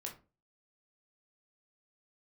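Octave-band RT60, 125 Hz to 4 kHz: 0.45, 0.40, 0.35, 0.30, 0.25, 0.20 seconds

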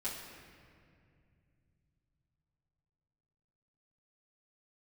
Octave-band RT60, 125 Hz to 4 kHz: 5.0, 3.6, 2.5, 2.0, 2.1, 1.5 seconds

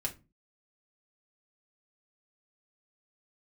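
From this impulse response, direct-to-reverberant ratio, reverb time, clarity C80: −1.0 dB, 0.25 s, 24.0 dB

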